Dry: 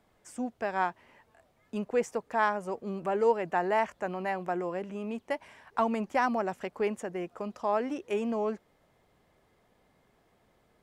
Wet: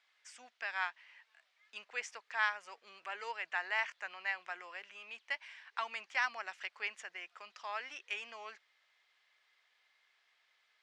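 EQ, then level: Butterworth band-pass 3.1 kHz, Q 0.84; +4.0 dB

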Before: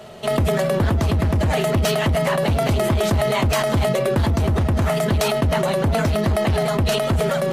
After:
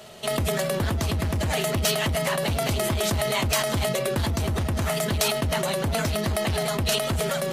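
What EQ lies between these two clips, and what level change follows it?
treble shelf 2.4 kHz +11 dB; -7.0 dB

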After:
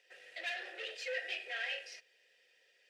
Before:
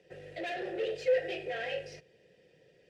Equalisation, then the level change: high-pass 1.4 kHz 12 dB/octave; +2.5 dB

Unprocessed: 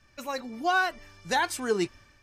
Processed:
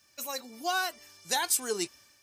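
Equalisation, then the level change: high-pass 44 Hz; RIAA curve recording; peaking EQ 1.7 kHz -6 dB 1.9 oct; -2.0 dB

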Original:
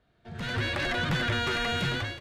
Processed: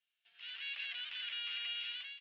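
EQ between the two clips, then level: ladder band-pass 3.1 kHz, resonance 70%; distance through air 320 m; treble shelf 4.8 kHz +5.5 dB; +1.5 dB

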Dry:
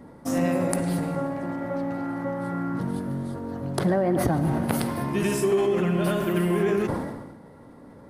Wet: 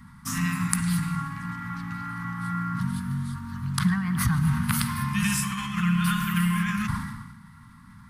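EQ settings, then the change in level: elliptic band-stop 230–1100 Hz, stop band 50 dB; peaking EQ 280 Hz -11 dB 0.73 oct; +5.5 dB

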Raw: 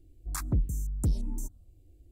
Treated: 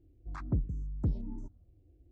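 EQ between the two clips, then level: high-pass 78 Hz 6 dB/octave; distance through air 82 m; tape spacing loss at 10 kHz 33 dB; 0.0 dB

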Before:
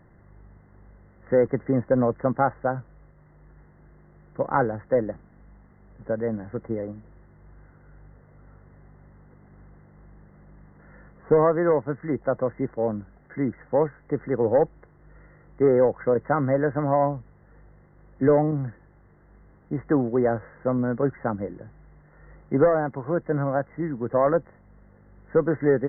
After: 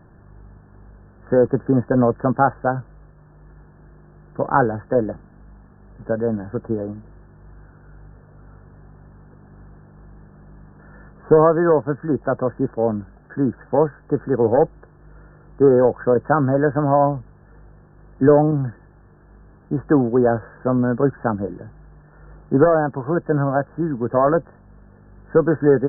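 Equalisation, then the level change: brick-wall FIR low-pass 1.8 kHz; band-stop 530 Hz, Q 12; +6.0 dB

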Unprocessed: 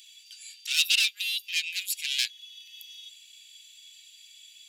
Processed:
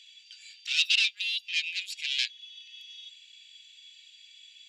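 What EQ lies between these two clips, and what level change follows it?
dynamic bell 1.4 kHz, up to -6 dB, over -48 dBFS, Q 2; distance through air 140 m; +3.0 dB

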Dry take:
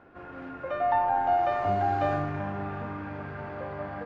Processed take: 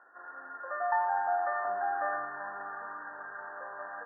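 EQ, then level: high-pass 1.4 kHz 12 dB/octave; brick-wall FIR low-pass 1.9 kHz; distance through air 480 m; +7.5 dB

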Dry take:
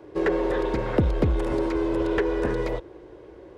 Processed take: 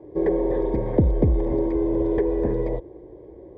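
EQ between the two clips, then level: boxcar filter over 32 samples; +3.5 dB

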